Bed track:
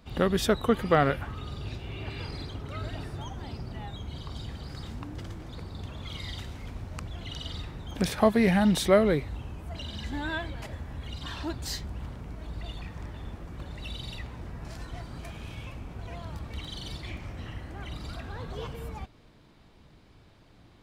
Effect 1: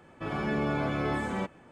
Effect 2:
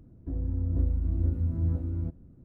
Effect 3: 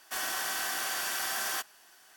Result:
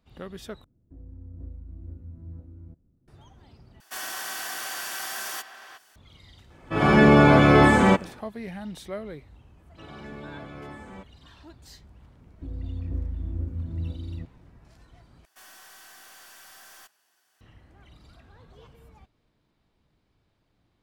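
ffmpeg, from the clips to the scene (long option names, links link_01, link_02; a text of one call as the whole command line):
ffmpeg -i bed.wav -i cue0.wav -i cue1.wav -i cue2.wav -filter_complex "[2:a]asplit=2[link_01][link_02];[3:a]asplit=2[link_03][link_04];[1:a]asplit=2[link_05][link_06];[0:a]volume=-14.5dB[link_07];[link_03]asplit=2[link_08][link_09];[link_09]adelay=360,highpass=300,lowpass=3400,asoftclip=type=hard:threshold=-30.5dB,volume=-9dB[link_10];[link_08][link_10]amix=inputs=2:normalize=0[link_11];[link_05]dynaudnorm=framelen=110:gausssize=5:maxgain=15.5dB[link_12];[link_04]aeval=exprs='(tanh(56.2*val(0)+0.15)-tanh(0.15))/56.2':channel_layout=same[link_13];[link_07]asplit=4[link_14][link_15][link_16][link_17];[link_14]atrim=end=0.644[link_18];[link_01]atrim=end=2.44,asetpts=PTS-STARTPTS,volume=-14dB[link_19];[link_15]atrim=start=3.076:end=3.804[link_20];[link_11]atrim=end=2.16,asetpts=PTS-STARTPTS,volume=-1dB[link_21];[link_16]atrim=start=5.956:end=15.254[link_22];[link_13]atrim=end=2.16,asetpts=PTS-STARTPTS,volume=-11.5dB[link_23];[link_17]atrim=start=17.406[link_24];[link_12]atrim=end=1.71,asetpts=PTS-STARTPTS,volume=-0.5dB,afade=type=in:duration=0.004:curve=hsin,afade=type=out:start_time=1.706:duration=0.004:curve=hsin,adelay=286650S[link_25];[link_06]atrim=end=1.71,asetpts=PTS-STARTPTS,volume=-11.5dB,afade=type=in:duration=0.004:curve=hsin,afade=type=out:start_time=1.706:duration=0.004:curve=hsin,adelay=9570[link_26];[link_02]atrim=end=2.44,asetpts=PTS-STARTPTS,volume=-4dB,afade=type=in:duration=0.004:curve=hsin,afade=type=out:start_time=2.436:duration=0.004:curve=hsin,adelay=12150[link_27];[link_18][link_19]acrossfade=duration=0.004:curve1=hsin:curve2=hsin[link_28];[link_28][link_20]acrossfade=duration=0.004:curve1=hsin:curve2=hsin[link_29];[link_29][link_21]acrossfade=duration=0.004:curve1=hsin:curve2=hsin[link_30];[link_30][link_22]acrossfade=duration=0.004:curve1=hsin:curve2=hsin[link_31];[link_31][link_23]acrossfade=duration=0.004:curve1=hsin:curve2=hsin[link_32];[link_32][link_24]acrossfade=duration=0.004:curve1=hsin:curve2=hsin[link_33];[link_33][link_25][link_26][link_27]amix=inputs=4:normalize=0" out.wav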